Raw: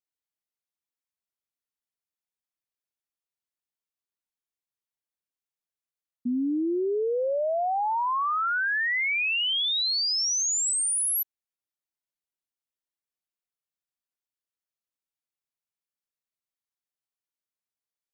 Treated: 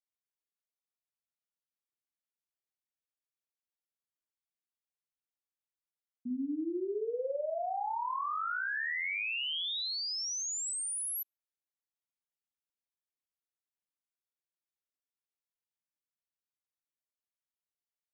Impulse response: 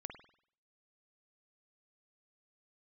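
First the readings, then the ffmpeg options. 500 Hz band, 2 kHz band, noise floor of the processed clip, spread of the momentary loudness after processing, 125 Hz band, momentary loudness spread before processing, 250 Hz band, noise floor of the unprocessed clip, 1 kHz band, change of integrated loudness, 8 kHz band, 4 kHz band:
-8.5 dB, -9.0 dB, under -85 dBFS, 4 LU, no reading, 5 LU, -8.5 dB, under -85 dBFS, -8.5 dB, -9.5 dB, -10.0 dB, -9.5 dB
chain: -filter_complex "[1:a]atrim=start_sample=2205,afade=t=out:st=0.21:d=0.01,atrim=end_sample=9702[s0];[0:a][s0]afir=irnorm=-1:irlink=0,volume=0.562"

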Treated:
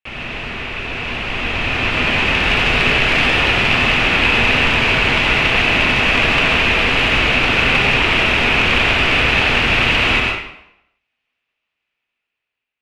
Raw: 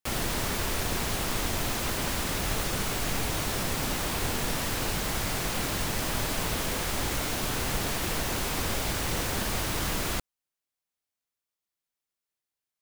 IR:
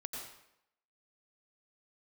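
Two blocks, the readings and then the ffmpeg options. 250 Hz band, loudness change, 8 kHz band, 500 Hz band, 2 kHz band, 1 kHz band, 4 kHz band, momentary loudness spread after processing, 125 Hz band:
+11.5 dB, +15.5 dB, -4.5 dB, +12.5 dB, +21.5 dB, +14.0 dB, +16.0 dB, 10 LU, +10.5 dB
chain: -filter_complex "[0:a]dynaudnorm=f=700:g=5:m=5.01,aeval=exprs='(mod(2.99*val(0)+1,2)-1)/2.99':c=same,lowpass=f=2600:t=q:w=5.2[s0];[1:a]atrim=start_sample=2205[s1];[s0][s1]afir=irnorm=-1:irlink=0,volume=1.19"

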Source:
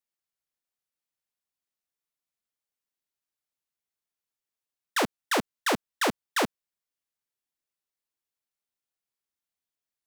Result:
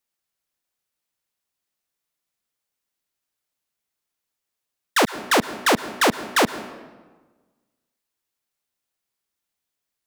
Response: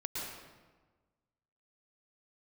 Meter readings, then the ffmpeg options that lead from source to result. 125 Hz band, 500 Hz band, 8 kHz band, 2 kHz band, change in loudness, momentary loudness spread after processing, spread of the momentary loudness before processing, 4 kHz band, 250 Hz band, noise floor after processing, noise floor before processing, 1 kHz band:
+8.0 dB, +8.0 dB, +8.0 dB, +8.0 dB, +8.0 dB, 5 LU, 2 LU, +8.0 dB, +8.0 dB, -83 dBFS, under -85 dBFS, +8.0 dB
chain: -filter_complex "[0:a]asplit=2[s0][s1];[1:a]atrim=start_sample=2205[s2];[s1][s2]afir=irnorm=-1:irlink=0,volume=0.211[s3];[s0][s3]amix=inputs=2:normalize=0,volume=2.11"

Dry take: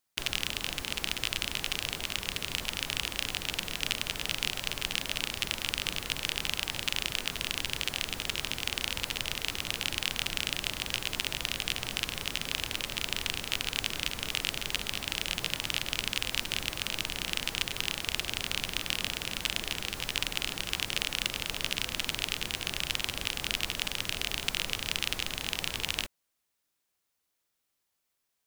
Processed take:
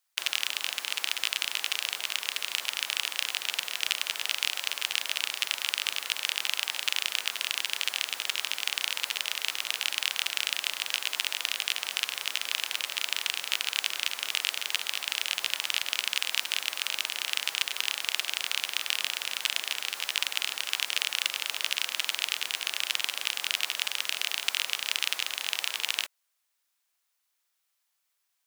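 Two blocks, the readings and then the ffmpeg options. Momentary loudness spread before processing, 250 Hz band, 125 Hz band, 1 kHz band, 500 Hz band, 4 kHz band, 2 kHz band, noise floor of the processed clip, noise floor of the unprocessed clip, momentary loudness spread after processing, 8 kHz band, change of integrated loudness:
2 LU, under -15 dB, under -25 dB, +1.0 dB, -6.0 dB, +3.0 dB, +3.0 dB, -78 dBFS, -81 dBFS, 2 LU, +3.0 dB, +3.0 dB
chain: -af "highpass=850,volume=1.41"

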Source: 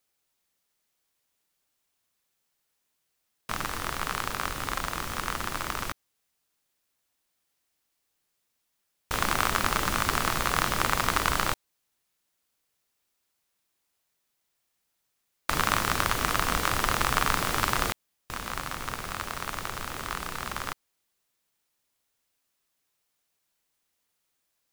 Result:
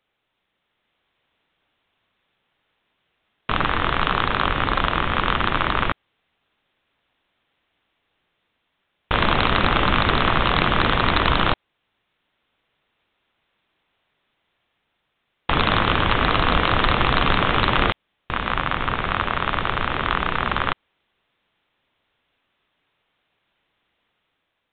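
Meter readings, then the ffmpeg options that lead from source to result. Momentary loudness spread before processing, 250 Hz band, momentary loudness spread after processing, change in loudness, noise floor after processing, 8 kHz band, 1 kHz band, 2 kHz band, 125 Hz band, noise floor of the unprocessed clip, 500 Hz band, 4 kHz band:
10 LU, +11.5 dB, 6 LU, +8.0 dB, -75 dBFS, under -40 dB, +8.5 dB, +8.0 dB, +11.0 dB, -78 dBFS, +10.5 dB, +8.5 dB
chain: -af "dynaudnorm=f=310:g=5:m=1.58,aresample=8000,aeval=exprs='0.168*(abs(mod(val(0)/0.168+3,4)-2)-1)':c=same,aresample=44100,volume=2.82"

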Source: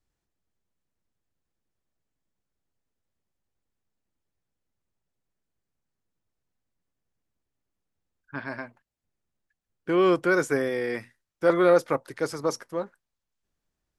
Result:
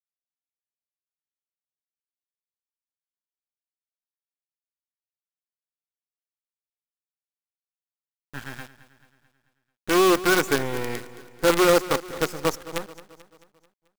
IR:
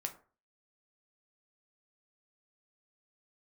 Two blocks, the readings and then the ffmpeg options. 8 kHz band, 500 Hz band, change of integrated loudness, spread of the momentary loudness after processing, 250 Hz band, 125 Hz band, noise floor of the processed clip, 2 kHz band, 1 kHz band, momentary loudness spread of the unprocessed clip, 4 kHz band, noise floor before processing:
+11.0 dB, +0.5 dB, +2.5 dB, 20 LU, +2.0 dB, +2.5 dB, under -85 dBFS, +3.5 dB, +4.5 dB, 19 LU, +12.0 dB, -84 dBFS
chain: -filter_complex "[0:a]superequalizer=8b=0.398:15b=1.58,asplit=2[s0][s1];[s1]aeval=exprs='sgn(val(0))*max(abs(val(0))-0.0141,0)':c=same,volume=0.376[s2];[s0][s2]amix=inputs=2:normalize=0,acrusher=bits=4:dc=4:mix=0:aa=0.000001,aecho=1:1:219|438|657|876|1095:0.15|0.0778|0.0405|0.021|0.0109"

